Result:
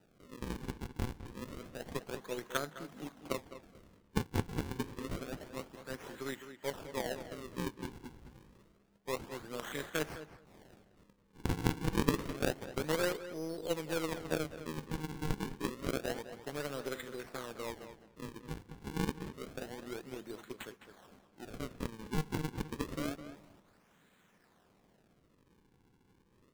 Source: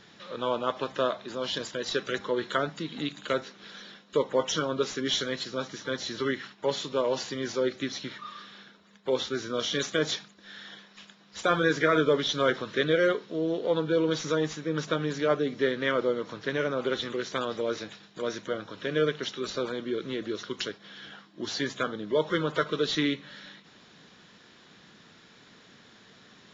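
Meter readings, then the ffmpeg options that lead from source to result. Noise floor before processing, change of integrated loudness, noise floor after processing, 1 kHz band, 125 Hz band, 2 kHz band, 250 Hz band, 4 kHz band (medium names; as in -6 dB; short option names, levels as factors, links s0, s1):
-56 dBFS, -10.5 dB, -69 dBFS, -10.5 dB, -2.5 dB, -11.5 dB, -8.0 dB, -14.5 dB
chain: -filter_complex "[0:a]acrusher=samples=40:mix=1:aa=0.000001:lfo=1:lforange=64:lforate=0.28,asplit=2[s0][s1];[s1]adelay=209,lowpass=f=3500:p=1,volume=0.355,asplit=2[s2][s3];[s3]adelay=209,lowpass=f=3500:p=1,volume=0.15[s4];[s0][s2][s4]amix=inputs=3:normalize=0,aeval=exprs='0.266*(cos(1*acos(clip(val(0)/0.266,-1,1)))-cos(1*PI/2))+0.0668*(cos(3*acos(clip(val(0)/0.266,-1,1)))-cos(3*PI/2))+0.00841*(cos(4*acos(clip(val(0)/0.266,-1,1)))-cos(4*PI/2))+0.00376*(cos(5*acos(clip(val(0)/0.266,-1,1)))-cos(5*PI/2))':c=same,volume=0.668"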